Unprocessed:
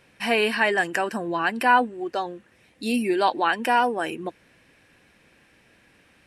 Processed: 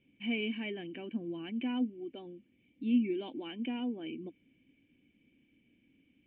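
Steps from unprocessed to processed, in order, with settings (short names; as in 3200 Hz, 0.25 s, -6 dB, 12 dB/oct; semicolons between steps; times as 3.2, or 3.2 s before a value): vocal tract filter i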